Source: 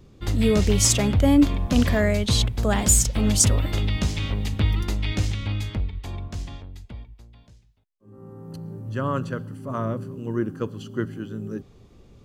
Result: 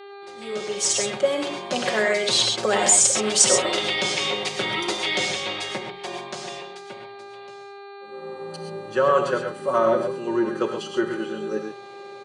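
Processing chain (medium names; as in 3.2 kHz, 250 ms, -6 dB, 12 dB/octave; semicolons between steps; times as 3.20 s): fade-in on the opening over 3.22 s; Chebyshev band-pass 120–9200 Hz, order 4; comb 5.4 ms, depth 86%; in parallel at -1.5 dB: compressor with a negative ratio -25 dBFS; on the sum: mains buzz 400 Hz, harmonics 11, -43 dBFS -6 dB/octave; resonant low shelf 290 Hz -14 dB, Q 1.5; gated-style reverb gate 150 ms rising, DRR 3.5 dB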